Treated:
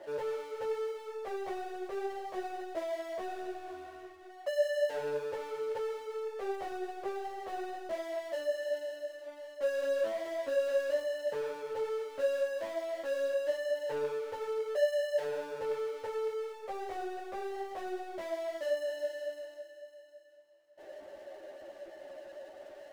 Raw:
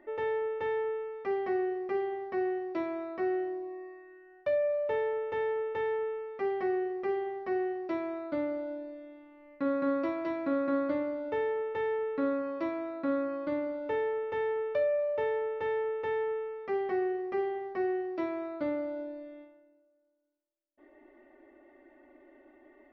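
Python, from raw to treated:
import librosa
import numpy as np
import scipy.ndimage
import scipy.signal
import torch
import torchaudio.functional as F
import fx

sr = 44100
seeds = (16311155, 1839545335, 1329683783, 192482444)

y = fx.ladder_bandpass(x, sr, hz=620.0, resonance_pct=70)
y = fx.power_curve(y, sr, exponent=0.5)
y = fx.ensemble(y, sr)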